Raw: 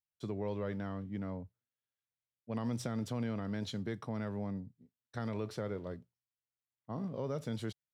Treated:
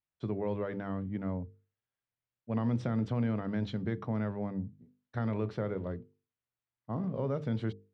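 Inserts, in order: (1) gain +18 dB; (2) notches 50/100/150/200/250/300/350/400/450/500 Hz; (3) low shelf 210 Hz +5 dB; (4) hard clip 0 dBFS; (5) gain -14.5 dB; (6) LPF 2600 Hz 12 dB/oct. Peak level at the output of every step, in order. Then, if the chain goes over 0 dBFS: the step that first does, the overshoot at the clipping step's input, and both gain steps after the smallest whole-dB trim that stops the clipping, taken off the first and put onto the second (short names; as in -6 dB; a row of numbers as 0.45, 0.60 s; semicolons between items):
-6.0, -6.5, -5.0, -5.0, -19.5, -20.0 dBFS; no overload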